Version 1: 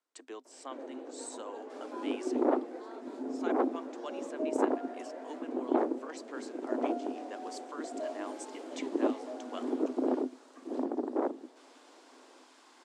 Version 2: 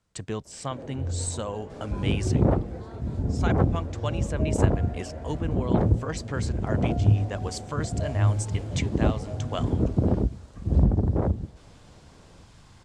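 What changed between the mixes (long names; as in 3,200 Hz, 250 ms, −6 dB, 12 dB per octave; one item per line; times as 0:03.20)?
speech +9.0 dB
master: remove Chebyshev high-pass with heavy ripple 250 Hz, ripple 3 dB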